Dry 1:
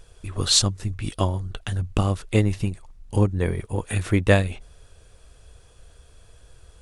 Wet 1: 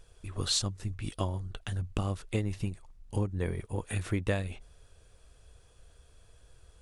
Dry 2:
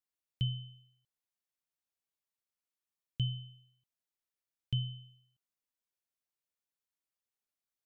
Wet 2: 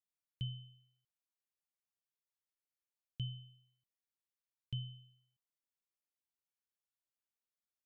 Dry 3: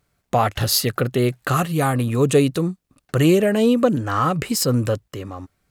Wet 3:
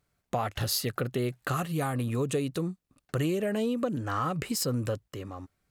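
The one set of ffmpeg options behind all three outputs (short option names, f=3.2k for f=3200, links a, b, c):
-af "acompressor=threshold=-18dB:ratio=5,volume=-7.5dB"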